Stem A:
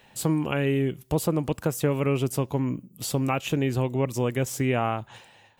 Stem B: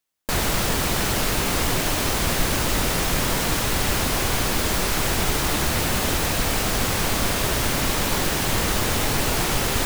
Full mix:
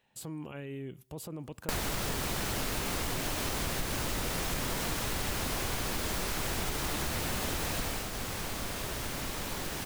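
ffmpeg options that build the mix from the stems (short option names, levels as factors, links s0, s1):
-filter_complex "[0:a]agate=range=0.398:threshold=0.00251:ratio=16:detection=peak,alimiter=limit=0.0631:level=0:latency=1:release=55,volume=0.355[s0];[1:a]adelay=1400,volume=0.944,afade=t=out:st=7.85:d=0.25:silence=0.237137[s1];[s0][s1]amix=inputs=2:normalize=0,acompressor=threshold=0.0282:ratio=5"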